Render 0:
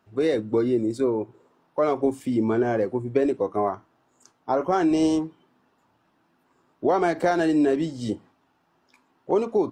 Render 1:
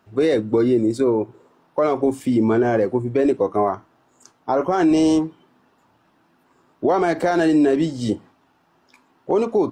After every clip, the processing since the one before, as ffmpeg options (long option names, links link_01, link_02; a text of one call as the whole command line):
ffmpeg -i in.wav -af "alimiter=limit=-15.5dB:level=0:latency=1:release=27,volume=6dB" out.wav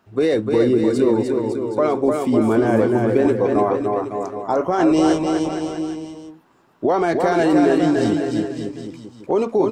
ffmpeg -i in.wav -af "aecho=1:1:300|555|771.8|956|1113:0.631|0.398|0.251|0.158|0.1" out.wav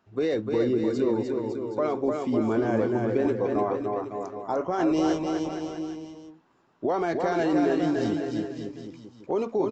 ffmpeg -i in.wav -af "aresample=16000,aresample=44100,volume=-8dB" out.wav